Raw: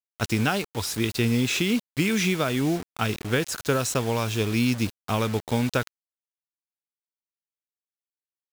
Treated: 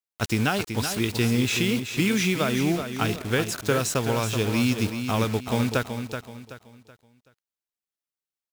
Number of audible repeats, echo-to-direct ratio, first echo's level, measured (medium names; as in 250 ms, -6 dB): 3, -7.5 dB, -8.0 dB